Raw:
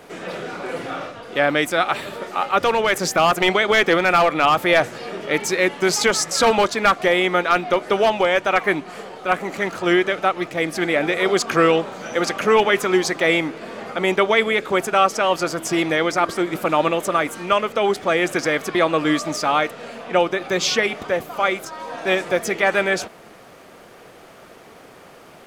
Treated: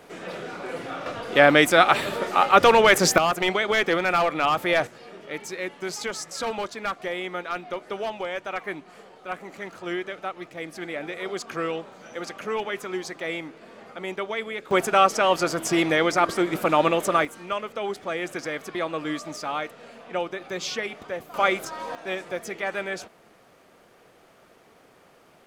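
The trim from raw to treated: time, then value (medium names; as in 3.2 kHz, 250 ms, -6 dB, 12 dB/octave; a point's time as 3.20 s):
-5 dB
from 1.06 s +3 dB
from 3.18 s -6 dB
from 4.87 s -13 dB
from 14.71 s -1.5 dB
from 17.25 s -10.5 dB
from 21.34 s -1.5 dB
from 21.95 s -11 dB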